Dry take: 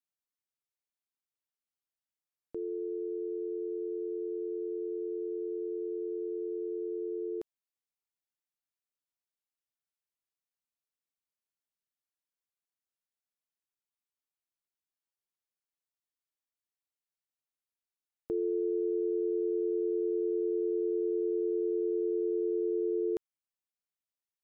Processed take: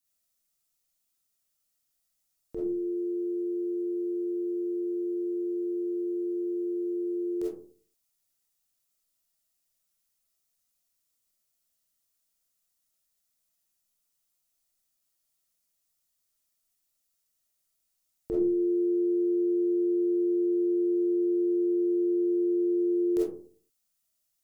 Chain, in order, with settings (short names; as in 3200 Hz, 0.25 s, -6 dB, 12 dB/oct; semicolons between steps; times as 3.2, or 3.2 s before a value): tone controls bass +7 dB, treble +12 dB; notch 410 Hz, Q 12; reverb RT60 0.45 s, pre-delay 5 ms, DRR -6 dB